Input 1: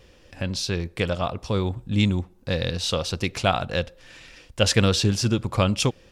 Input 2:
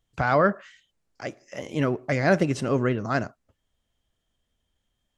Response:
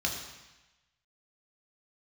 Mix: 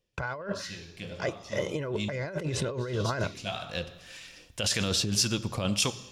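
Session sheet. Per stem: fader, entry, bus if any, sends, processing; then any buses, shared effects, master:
-7.0 dB, 0.00 s, send -18 dB, bass shelf 92 Hz -10.5 dB; harmonic tremolo 1.8 Hz, depth 50%, crossover 770 Hz; auto duck -18 dB, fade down 0.40 s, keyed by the second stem
-1.5 dB, 0.00 s, no send, treble shelf 4.1 kHz -10 dB; comb 2 ms, depth 64%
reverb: on, RT60 1.0 s, pre-delay 3 ms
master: gate with hold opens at -49 dBFS; compressor with a negative ratio -31 dBFS, ratio -1; treble shelf 5.7 kHz +9.5 dB

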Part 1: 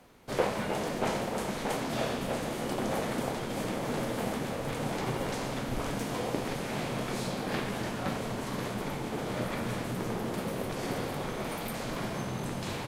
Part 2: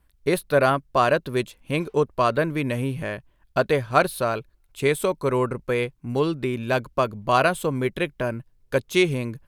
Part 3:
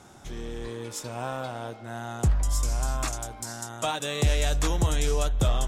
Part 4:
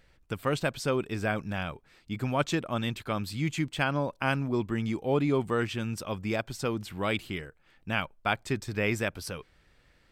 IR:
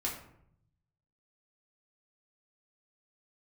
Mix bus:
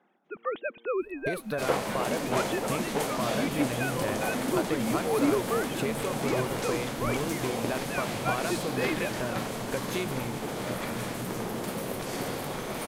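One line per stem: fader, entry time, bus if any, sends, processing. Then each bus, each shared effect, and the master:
+1.0 dB, 1.30 s, no send, bass shelf 140 Hz -4.5 dB; treble shelf 6.9 kHz +7.5 dB
-0.5 dB, 1.00 s, no send, compression 6:1, threshold -30 dBFS, peak gain reduction 17 dB
-19.5 dB, 0.00 s, no send, low-pass 1.6 kHz 12 dB/octave; compressor with a negative ratio -33 dBFS; elliptic high-pass 180 Hz; auto duck -10 dB, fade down 0.35 s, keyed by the fourth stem
-3.0 dB, 0.00 s, no send, formants replaced by sine waves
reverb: none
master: none

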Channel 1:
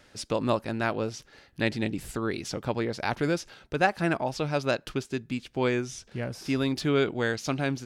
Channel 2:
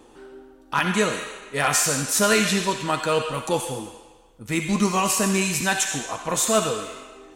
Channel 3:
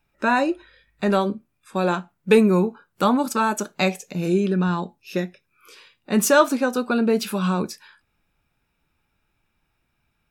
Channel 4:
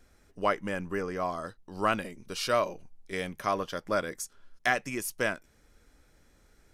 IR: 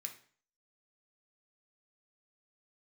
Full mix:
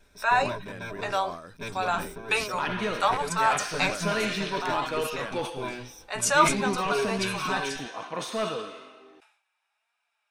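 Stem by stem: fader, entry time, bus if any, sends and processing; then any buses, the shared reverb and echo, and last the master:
-10.5 dB, 0.00 s, no send, comb filter that takes the minimum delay 5.1 ms; rippled EQ curve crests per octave 1.6, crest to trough 16 dB
-7.0 dB, 1.85 s, no send, high-pass 170 Hz; hard clipper -15.5 dBFS, distortion -16 dB; Savitzky-Golay filter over 15 samples
+2.5 dB, 0.00 s, no send, flange 1.1 Hz, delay 3.9 ms, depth 1.7 ms, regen +60%; Chebyshev band-pass 710–9500 Hz, order 3
-2.0 dB, 0.00 s, no send, compression 2.5:1, threshold -40 dBFS, peak gain reduction 13 dB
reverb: none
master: decay stretcher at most 96 dB/s

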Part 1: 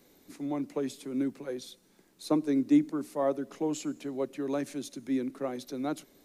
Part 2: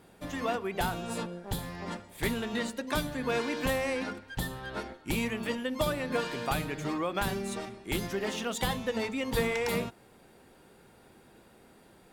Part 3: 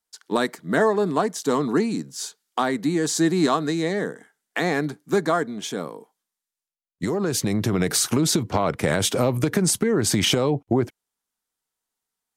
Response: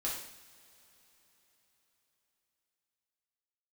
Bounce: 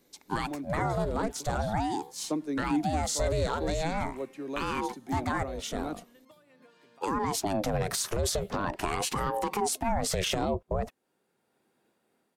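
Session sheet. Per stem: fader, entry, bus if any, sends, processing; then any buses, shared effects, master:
-4.5 dB, 0.00 s, no send, none
-13.0 dB, 0.50 s, no send, high-pass 170 Hz; compression, threshold -33 dBFS, peak gain reduction 9 dB; random flutter of the level, depth 55%; auto duck -7 dB, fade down 1.80 s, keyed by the third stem
-2.5 dB, 0.00 s, no send, ring modulator with a swept carrier 450 Hz, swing 50%, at 0.43 Hz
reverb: none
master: peak limiter -18.5 dBFS, peak gain reduction 6.5 dB

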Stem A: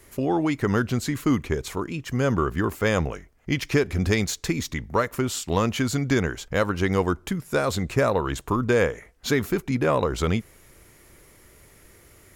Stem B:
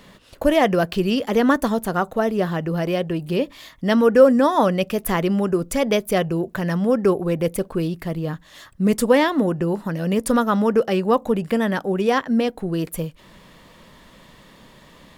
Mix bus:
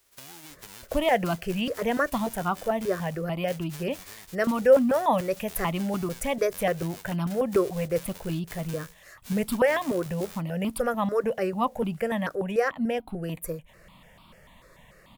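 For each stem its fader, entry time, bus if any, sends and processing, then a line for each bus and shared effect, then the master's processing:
-14.5 dB, 0.00 s, no send, formants flattened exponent 0.1; compression 6:1, threshold -28 dBFS, peak gain reduction 13 dB
-3.0 dB, 0.50 s, no send, stepped phaser 6.8 Hz 830–1800 Hz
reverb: none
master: none

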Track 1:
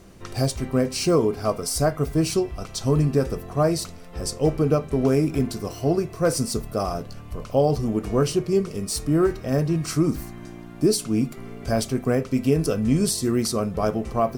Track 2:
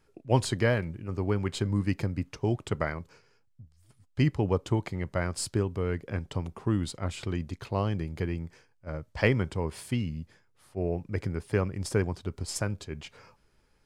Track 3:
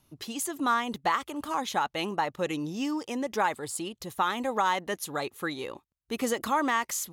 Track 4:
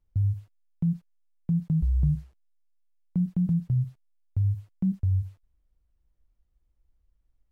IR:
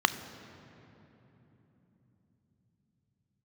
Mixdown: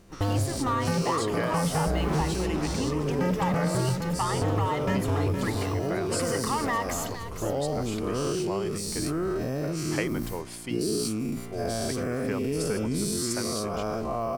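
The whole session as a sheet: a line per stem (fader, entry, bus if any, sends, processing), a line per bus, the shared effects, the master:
-12.0 dB, 0.00 s, no send, no echo send, every event in the spectrogram widened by 240 ms; transient shaper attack 0 dB, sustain +6 dB
-0.5 dB, 0.75 s, no send, no echo send, tone controls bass -13 dB, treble +4 dB
-15.0 dB, 0.00 s, send -7 dB, echo send -5 dB, waveshaping leveller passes 3; small samples zeroed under -38 dBFS
+1.0 dB, 0.05 s, no send, echo send -7.5 dB, waveshaping leveller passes 5; wavefolder -18 dBFS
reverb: on, RT60 3.5 s, pre-delay 3 ms
echo: feedback delay 463 ms, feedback 40%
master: compression 2.5:1, threshold -25 dBFS, peak gain reduction 7 dB

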